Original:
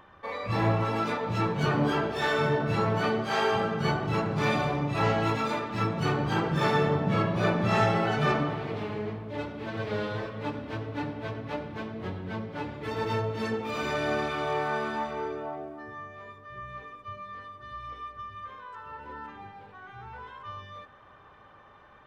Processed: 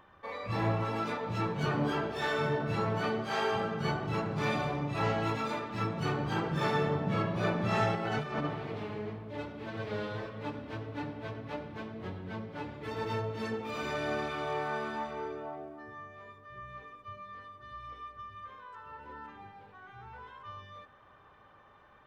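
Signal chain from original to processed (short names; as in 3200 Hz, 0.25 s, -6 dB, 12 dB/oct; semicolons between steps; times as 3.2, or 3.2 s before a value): 7.95–8.47 negative-ratio compressor -28 dBFS, ratio -0.5; gain -5 dB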